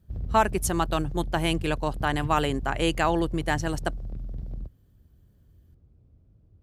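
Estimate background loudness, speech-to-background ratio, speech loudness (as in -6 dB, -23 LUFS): -36.5 LUFS, 9.5 dB, -27.0 LUFS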